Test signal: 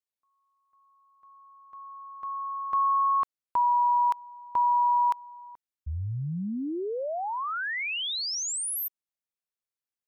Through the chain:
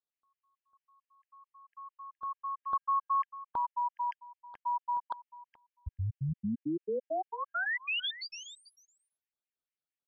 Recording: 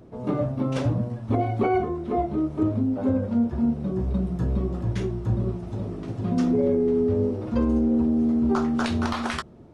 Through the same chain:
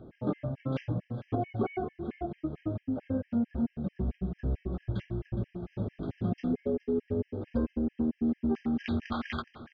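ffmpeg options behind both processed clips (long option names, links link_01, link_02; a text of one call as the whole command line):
ffmpeg -i in.wav -af "lowpass=frequency=3800:width=0.5412,lowpass=frequency=3800:width=1.3066,bandreject=frequency=1000:width=7.5,acompressor=threshold=-24dB:ratio=6:attack=16:release=874:knee=6,aecho=1:1:418:0.168,afftfilt=real='re*gt(sin(2*PI*4.5*pts/sr)*(1-2*mod(floor(b*sr/1024/1600),2)),0)':imag='im*gt(sin(2*PI*4.5*pts/sr)*(1-2*mod(floor(b*sr/1024/1600),2)),0)':win_size=1024:overlap=0.75" out.wav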